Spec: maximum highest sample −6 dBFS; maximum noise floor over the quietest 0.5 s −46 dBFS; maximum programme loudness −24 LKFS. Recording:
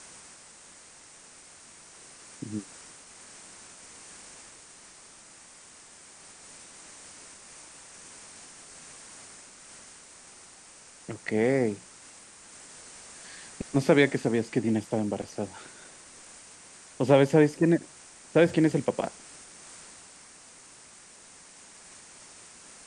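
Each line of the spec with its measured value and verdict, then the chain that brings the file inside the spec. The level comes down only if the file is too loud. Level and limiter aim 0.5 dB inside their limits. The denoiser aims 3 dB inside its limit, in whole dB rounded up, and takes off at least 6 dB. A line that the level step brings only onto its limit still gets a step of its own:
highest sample −7.0 dBFS: in spec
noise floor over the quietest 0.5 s −52 dBFS: in spec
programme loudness −26.0 LKFS: in spec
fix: no processing needed

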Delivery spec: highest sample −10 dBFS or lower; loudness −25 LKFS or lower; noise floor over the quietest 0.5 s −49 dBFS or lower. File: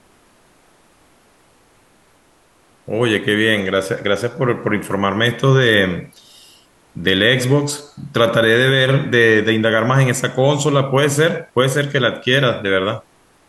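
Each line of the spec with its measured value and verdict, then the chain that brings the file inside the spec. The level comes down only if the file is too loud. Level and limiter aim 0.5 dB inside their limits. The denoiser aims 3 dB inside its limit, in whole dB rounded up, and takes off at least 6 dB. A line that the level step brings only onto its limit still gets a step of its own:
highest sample −2.5 dBFS: out of spec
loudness −16.0 LKFS: out of spec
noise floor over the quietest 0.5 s −54 dBFS: in spec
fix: level −9.5 dB

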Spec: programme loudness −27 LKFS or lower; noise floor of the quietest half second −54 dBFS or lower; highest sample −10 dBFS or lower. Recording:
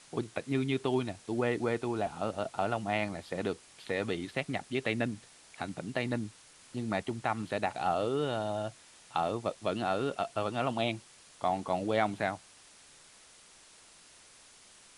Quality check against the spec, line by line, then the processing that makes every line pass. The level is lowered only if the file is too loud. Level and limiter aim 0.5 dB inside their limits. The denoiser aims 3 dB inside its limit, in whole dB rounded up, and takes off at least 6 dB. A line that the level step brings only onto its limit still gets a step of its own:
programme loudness −33.5 LKFS: in spec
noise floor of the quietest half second −57 dBFS: in spec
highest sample −14.0 dBFS: in spec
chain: no processing needed

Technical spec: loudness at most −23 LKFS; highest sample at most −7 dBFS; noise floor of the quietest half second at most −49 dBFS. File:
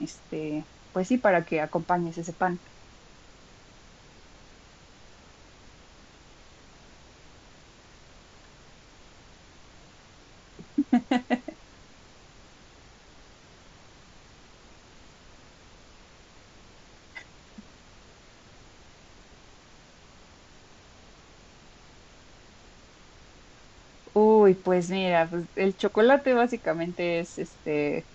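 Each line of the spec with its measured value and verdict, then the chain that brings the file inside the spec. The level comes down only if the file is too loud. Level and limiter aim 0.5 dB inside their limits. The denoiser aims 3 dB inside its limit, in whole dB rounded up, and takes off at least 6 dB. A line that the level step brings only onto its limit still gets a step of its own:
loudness −25.5 LKFS: in spec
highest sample −9.0 dBFS: in spec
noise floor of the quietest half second −53 dBFS: in spec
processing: no processing needed

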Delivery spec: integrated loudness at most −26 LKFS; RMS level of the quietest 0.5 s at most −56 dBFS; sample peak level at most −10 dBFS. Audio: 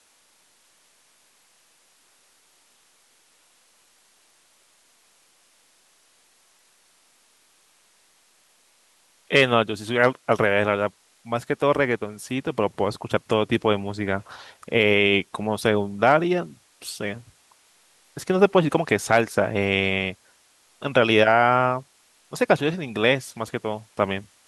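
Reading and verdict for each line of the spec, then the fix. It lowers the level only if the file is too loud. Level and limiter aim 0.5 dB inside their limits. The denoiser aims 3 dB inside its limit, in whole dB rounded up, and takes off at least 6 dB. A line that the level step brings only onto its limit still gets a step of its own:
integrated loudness −22.0 LKFS: out of spec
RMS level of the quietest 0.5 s −61 dBFS: in spec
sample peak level −2.0 dBFS: out of spec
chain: level −4.5 dB
brickwall limiter −10.5 dBFS

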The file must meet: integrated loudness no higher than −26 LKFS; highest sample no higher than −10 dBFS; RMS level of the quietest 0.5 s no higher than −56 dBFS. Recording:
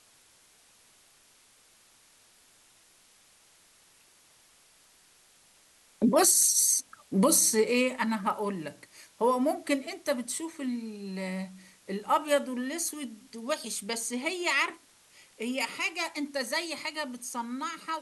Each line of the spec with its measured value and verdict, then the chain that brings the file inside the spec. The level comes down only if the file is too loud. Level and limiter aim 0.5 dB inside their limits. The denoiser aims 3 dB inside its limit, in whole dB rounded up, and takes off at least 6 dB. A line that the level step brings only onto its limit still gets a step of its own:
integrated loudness −28.0 LKFS: in spec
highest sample −9.0 dBFS: out of spec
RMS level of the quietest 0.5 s −61 dBFS: in spec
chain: brickwall limiter −10.5 dBFS

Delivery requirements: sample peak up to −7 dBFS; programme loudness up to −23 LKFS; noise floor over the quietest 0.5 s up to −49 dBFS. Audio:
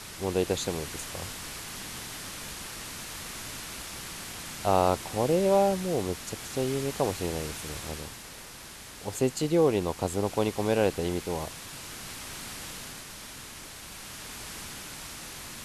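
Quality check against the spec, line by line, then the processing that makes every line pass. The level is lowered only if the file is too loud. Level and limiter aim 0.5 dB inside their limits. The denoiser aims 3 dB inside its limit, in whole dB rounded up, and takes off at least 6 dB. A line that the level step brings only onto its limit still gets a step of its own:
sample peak −8.5 dBFS: in spec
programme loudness −31.0 LKFS: in spec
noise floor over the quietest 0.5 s −45 dBFS: out of spec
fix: broadband denoise 7 dB, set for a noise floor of −45 dBFS

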